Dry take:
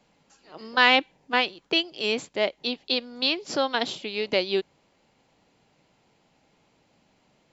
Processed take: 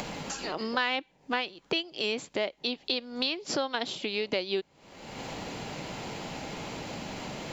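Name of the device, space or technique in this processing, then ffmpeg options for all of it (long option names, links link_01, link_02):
upward and downward compression: -af "acompressor=mode=upward:threshold=-28dB:ratio=2.5,acompressor=threshold=-38dB:ratio=3,volume=7dB"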